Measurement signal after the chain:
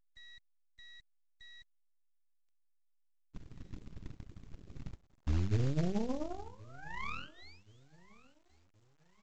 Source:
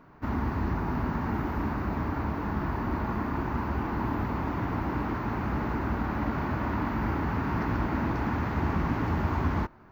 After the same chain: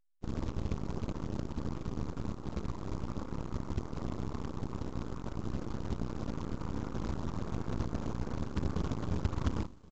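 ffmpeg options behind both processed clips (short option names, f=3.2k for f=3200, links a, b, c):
-filter_complex "[0:a]afftfilt=real='re*gte(hypot(re,im),0.0501)':imag='im*gte(hypot(re,im),0.0501)':win_size=1024:overlap=0.75,lowpass=f=1.3k:w=0.5412,lowpass=f=1.3k:w=1.3066,equalizer=f=730:w=0.92:g=-11.5,aecho=1:1:0.9:0.76,bandreject=f=47.82:t=h:w=4,bandreject=f=95.64:t=h:w=4,bandreject=f=143.46:t=h:w=4,bandreject=f=191.28:t=h:w=4,bandreject=f=239.1:t=h:w=4,bandreject=f=286.92:t=h:w=4,bandreject=f=334.74:t=h:w=4,bandreject=f=382.56:t=h:w=4,bandreject=f=430.38:t=h:w=4,bandreject=f=478.2:t=h:w=4,bandreject=f=526.02:t=h:w=4,bandreject=f=573.84:t=h:w=4,bandreject=f=621.66:t=h:w=4,bandreject=f=669.48:t=h:w=4,bandreject=f=717.3:t=h:w=4,bandreject=f=765.12:t=h:w=4,bandreject=f=812.94:t=h:w=4,bandreject=f=860.76:t=h:w=4,bandreject=f=908.58:t=h:w=4,bandreject=f=956.4:t=h:w=4,bandreject=f=1.00422k:t=h:w=4,bandreject=f=1.05204k:t=h:w=4,bandreject=f=1.09986k:t=h:w=4,bandreject=f=1.14768k:t=h:w=4,bandreject=f=1.1955k:t=h:w=4,bandreject=f=1.24332k:t=h:w=4,bandreject=f=1.29114k:t=h:w=4,bandreject=f=1.33896k:t=h:w=4,bandreject=f=1.38678k:t=h:w=4,bandreject=f=1.4346k:t=h:w=4,asplit=2[a][b];[b]acompressor=threshold=-40dB:ratio=4,volume=1.5dB[c];[a][c]amix=inputs=2:normalize=0,acrusher=bits=6:mode=log:mix=0:aa=0.000001,aeval=exprs='0.224*(cos(1*acos(clip(val(0)/0.224,-1,1)))-cos(1*PI/2))+0.0501*(cos(3*acos(clip(val(0)/0.224,-1,1)))-cos(3*PI/2))+0.00251*(cos(5*acos(clip(val(0)/0.224,-1,1)))-cos(5*PI/2))+0.0316*(cos(6*acos(clip(val(0)/0.224,-1,1)))-cos(6*PI/2))+0.00891*(cos(7*acos(clip(val(0)/0.224,-1,1)))-cos(7*PI/2))':c=same,aecho=1:1:1076|2152|3228:0.0668|0.0274|0.0112,volume=-7.5dB" -ar 16000 -c:a pcm_alaw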